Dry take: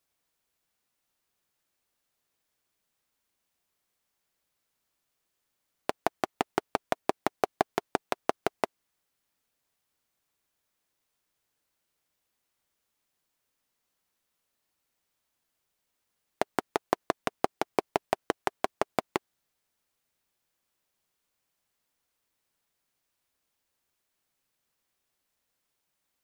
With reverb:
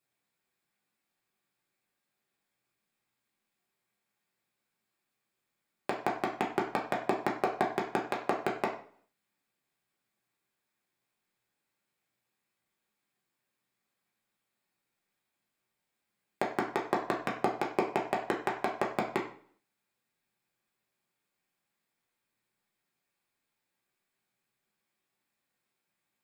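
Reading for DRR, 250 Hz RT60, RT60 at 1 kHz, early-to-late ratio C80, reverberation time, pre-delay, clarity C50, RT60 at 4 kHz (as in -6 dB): -2.5 dB, 0.60 s, 0.50 s, 12.0 dB, 0.50 s, 3 ms, 8.0 dB, 0.45 s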